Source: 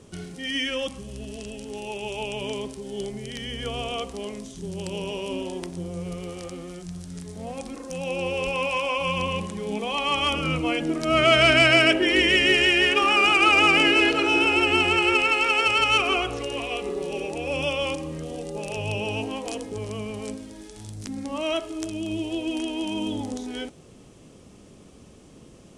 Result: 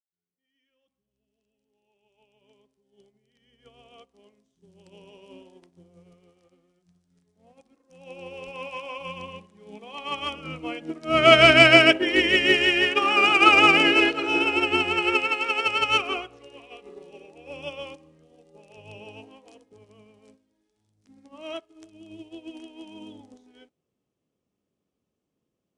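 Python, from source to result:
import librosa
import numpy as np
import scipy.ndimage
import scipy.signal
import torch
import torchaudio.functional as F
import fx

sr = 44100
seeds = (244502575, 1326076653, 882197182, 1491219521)

y = fx.fade_in_head(x, sr, length_s=4.95)
y = fx.highpass(y, sr, hz=120.0, slope=6)
y = fx.high_shelf(y, sr, hz=7500.0, db=-11.0)
y = fx.upward_expand(y, sr, threshold_db=-40.0, expansion=2.5)
y = y * 10.0 ** (6.0 / 20.0)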